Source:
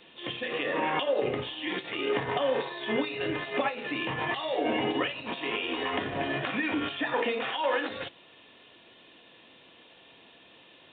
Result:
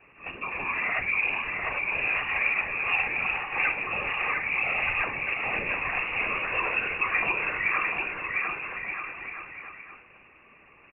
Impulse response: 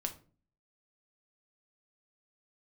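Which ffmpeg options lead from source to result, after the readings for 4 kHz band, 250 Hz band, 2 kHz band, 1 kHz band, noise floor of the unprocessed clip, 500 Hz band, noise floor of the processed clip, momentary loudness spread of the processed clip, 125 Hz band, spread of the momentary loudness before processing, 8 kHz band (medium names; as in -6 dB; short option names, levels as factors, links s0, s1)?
-7.0 dB, -11.5 dB, +8.5 dB, +0.5 dB, -56 dBFS, -10.0 dB, -56 dBFS, 11 LU, -3.5 dB, 5 LU, no reading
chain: -filter_complex "[0:a]lowpass=f=2500:t=q:w=0.5098,lowpass=f=2500:t=q:w=0.6013,lowpass=f=2500:t=q:w=0.9,lowpass=f=2500:t=q:w=2.563,afreqshift=-2900,asplit=2[s0][s1];[1:a]atrim=start_sample=2205[s2];[s1][s2]afir=irnorm=-1:irlink=0,volume=1.19[s3];[s0][s3]amix=inputs=2:normalize=0,afftfilt=real='hypot(re,im)*cos(2*PI*random(0))':imag='hypot(re,im)*sin(2*PI*random(1))':win_size=512:overlap=0.75,aecho=1:1:700|1225|1619|1914|2136:0.631|0.398|0.251|0.158|0.1"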